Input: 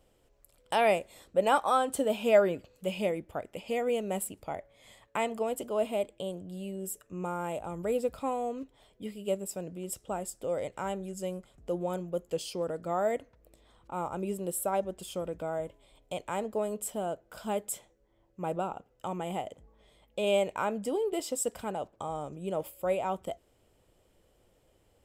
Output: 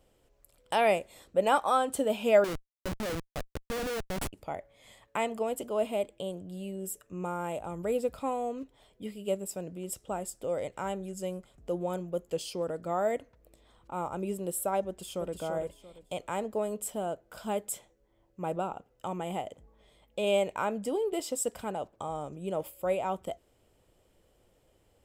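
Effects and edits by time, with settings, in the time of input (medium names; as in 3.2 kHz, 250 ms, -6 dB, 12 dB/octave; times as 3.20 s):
2.44–4.33 s: Schmitt trigger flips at -31.5 dBFS
14.86–15.38 s: echo throw 340 ms, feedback 25%, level -5 dB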